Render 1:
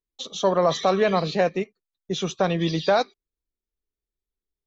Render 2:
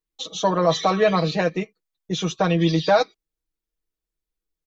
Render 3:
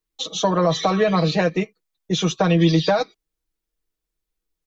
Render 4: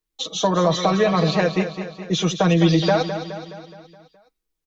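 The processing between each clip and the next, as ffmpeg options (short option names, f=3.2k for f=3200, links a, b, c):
-af "aecho=1:1:6.3:0.84"
-filter_complex "[0:a]acrossover=split=250[a][b];[b]acompressor=threshold=-20dB:ratio=6[c];[a][c]amix=inputs=2:normalize=0,volume=4dB"
-af "aecho=1:1:210|420|630|840|1050|1260:0.316|0.171|0.0922|0.0498|0.0269|0.0145"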